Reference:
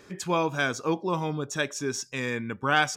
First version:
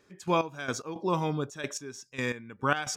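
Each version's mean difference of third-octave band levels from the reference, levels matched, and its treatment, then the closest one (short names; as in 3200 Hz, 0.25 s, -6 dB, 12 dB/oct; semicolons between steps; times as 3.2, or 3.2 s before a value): 5.5 dB: step gate "..x..x.xxxx.x." 110 bpm -12 dB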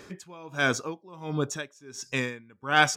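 7.5 dB: dB-linear tremolo 1.4 Hz, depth 26 dB; gain +5 dB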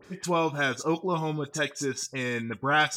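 2.5 dB: dispersion highs, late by 45 ms, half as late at 2600 Hz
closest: third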